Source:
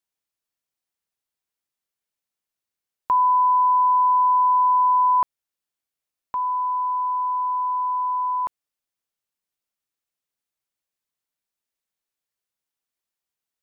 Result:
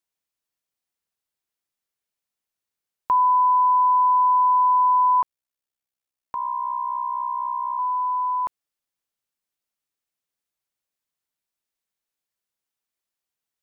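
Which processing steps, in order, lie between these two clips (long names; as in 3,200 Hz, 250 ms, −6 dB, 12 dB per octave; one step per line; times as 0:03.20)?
0:05.21–0:07.79: ring modulation 32 Hz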